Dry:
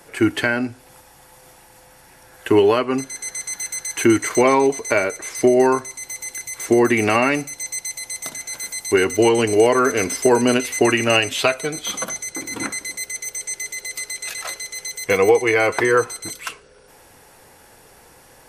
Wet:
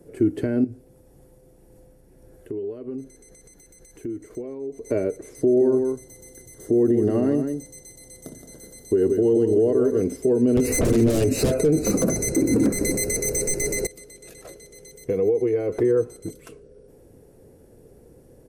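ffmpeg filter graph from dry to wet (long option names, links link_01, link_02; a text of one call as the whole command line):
ffmpeg -i in.wav -filter_complex "[0:a]asettb=1/sr,asplit=3[link_01][link_02][link_03];[link_01]atrim=end=0.644[link_04];[link_02]atrim=start=0.64:end=4.86,asetpts=PTS-STARTPTS,afade=type=in:duration=0.004:curve=qsin,afade=type=out:start_time=4.216:duration=0.004:curve=qsin,tremolo=f=1.8:d=0.34,asubboost=boost=3.5:cutoff=57,acompressor=threshold=-32dB:ratio=6:attack=3.2:release=140:knee=1:detection=peak[link_05];[link_03]atrim=start=4.856[link_06];[link_04][link_05]acrossfade=duration=0.004:curve1=hsin:curve2=qsin[link_07];[link_07][link_06]acrossfade=duration=0.004:curve1=qsin:curve2=hsin,asettb=1/sr,asplit=3[link_08][link_09][link_10];[link_08]atrim=end=5.404[link_11];[link_09]atrim=start=5.4:end=10.01,asetpts=PTS-STARTPTS,afade=type=in:duration=0.004:curve=qsin,afade=type=out:start_time=4.606:duration=0.004:curve=qsin,asuperstop=centerf=2400:order=8:qfactor=3.3,aecho=1:1:170:0.376,atrim=end_sample=203301[link_12];[link_10]atrim=start=10.006[link_13];[link_11][link_12]acrossfade=duration=0.004:curve1=hsin:curve2=qsin[link_14];[link_14][link_13]acrossfade=duration=0.004:curve1=qsin:curve2=hsin,asettb=1/sr,asplit=3[link_15][link_16][link_17];[link_15]atrim=end=10.574[link_18];[link_16]atrim=start=10.57:end=13.87,asetpts=PTS-STARTPTS,afade=type=in:duration=0.004:curve=qsin,afade=type=out:start_time=3.296:duration=0.004:curve=qsin,asuperstop=centerf=3300:order=8:qfactor=3.1,aeval=exprs='0.794*sin(PI/2*7.08*val(0)/0.794)':channel_layout=same[link_19];[link_17]atrim=start=13.866[link_20];[link_18][link_19]acrossfade=duration=0.004:curve1=hsin:curve2=qsin[link_21];[link_21][link_20]acrossfade=duration=0.004:curve1=qsin:curve2=hsin,asettb=1/sr,asplit=3[link_22][link_23][link_24];[link_22]atrim=end=15.074[link_25];[link_23]atrim=start=15.07:end=15.79,asetpts=PTS-STARTPTS,afade=type=in:duration=0.004:curve=qsin,afade=type=out:start_time=0.716:duration=0.004:curve=qsin,equalizer=frequency=8000:width=6.4:gain=-8,acompressor=threshold=-19dB:ratio=5:attack=3.2:release=140:knee=1:detection=peak[link_26];[link_24]atrim=start=15.786[link_27];[link_25][link_26]acrossfade=duration=0.004:curve1=hsin:curve2=qsin[link_28];[link_28][link_27]acrossfade=duration=0.004:curve1=qsin:curve2=hsin,firequalizer=gain_entry='entry(440,0);entry(860,-23);entry(2800,-26);entry(10000,-16)':delay=0.05:min_phase=1,alimiter=limit=-15.5dB:level=0:latency=1:release=149,highshelf=frequency=11000:gain=-3,volume=4dB" out.wav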